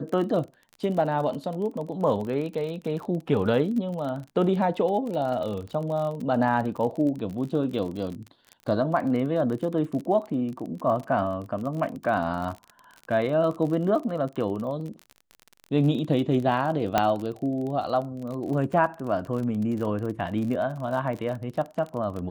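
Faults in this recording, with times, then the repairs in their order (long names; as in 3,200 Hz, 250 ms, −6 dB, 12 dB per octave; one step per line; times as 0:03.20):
surface crackle 40 per second −32 dBFS
0:16.98: click −7 dBFS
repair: click removal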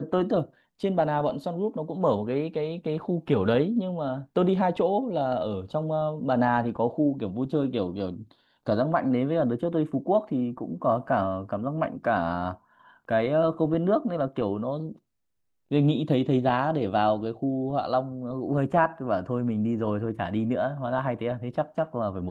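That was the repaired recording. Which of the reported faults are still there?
none of them is left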